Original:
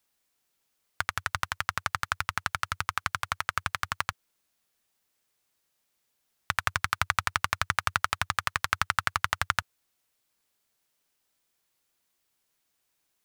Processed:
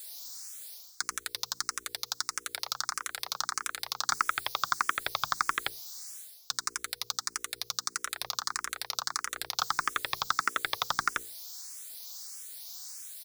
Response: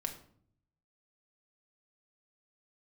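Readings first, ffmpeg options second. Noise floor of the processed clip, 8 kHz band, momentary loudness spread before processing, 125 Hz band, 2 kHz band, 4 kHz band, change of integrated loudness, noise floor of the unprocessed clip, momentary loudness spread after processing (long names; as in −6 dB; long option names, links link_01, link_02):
−58 dBFS, +6.5 dB, 5 LU, −16.0 dB, −4.5 dB, +3.5 dB, −3.5 dB, −77 dBFS, 11 LU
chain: -filter_complex "[0:a]acrossover=split=400 5500:gain=0.178 1 0.158[link_01][link_02][link_03];[link_01][link_02][link_03]amix=inputs=3:normalize=0,asplit=2[link_04][link_05];[link_05]adelay=1574,volume=-10dB,highshelf=frequency=4000:gain=-35.4[link_06];[link_04][link_06]amix=inputs=2:normalize=0,aexciter=amount=11.3:drive=5.2:freq=4200,areverse,acompressor=threshold=-36dB:ratio=5,areverse,highpass=frequency=160:width=0.5412,highpass=frequency=160:width=1.3066,acrossover=split=1700[link_07][link_08];[link_07]aeval=exprs='0.0178*(abs(mod(val(0)/0.0178+3,4)-2)-1)':channel_layout=same[link_09];[link_08]highshelf=frequency=10000:gain=4.5[link_10];[link_09][link_10]amix=inputs=2:normalize=0,bandreject=frequency=60:width_type=h:width=6,bandreject=frequency=120:width_type=h:width=6,bandreject=frequency=180:width_type=h:width=6,bandreject=frequency=240:width_type=h:width=6,bandreject=frequency=300:width_type=h:width=6,bandreject=frequency=360:width_type=h:width=6,bandreject=frequency=420:width_type=h:width=6,bandreject=frequency=480:width_type=h:width=6,alimiter=level_in=31dB:limit=-1dB:release=50:level=0:latency=1,asplit=2[link_11][link_12];[link_12]afreqshift=1.6[link_13];[link_11][link_13]amix=inputs=2:normalize=1,volume=-8dB"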